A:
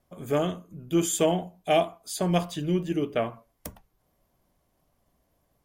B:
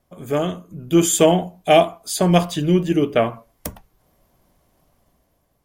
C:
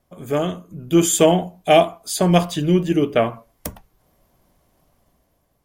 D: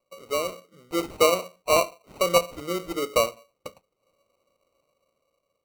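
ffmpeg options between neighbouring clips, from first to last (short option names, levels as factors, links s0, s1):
-af "dynaudnorm=f=150:g=9:m=2,volume=1.5"
-af anull
-filter_complex "[0:a]asplit=3[s0][s1][s2];[s0]bandpass=f=530:t=q:w=8,volume=1[s3];[s1]bandpass=f=1840:t=q:w=8,volume=0.501[s4];[s2]bandpass=f=2480:t=q:w=8,volume=0.355[s5];[s3][s4][s5]amix=inputs=3:normalize=0,acrossover=split=140[s6][s7];[s7]acrusher=samples=26:mix=1:aa=0.000001[s8];[s6][s8]amix=inputs=2:normalize=0,volume=1.5"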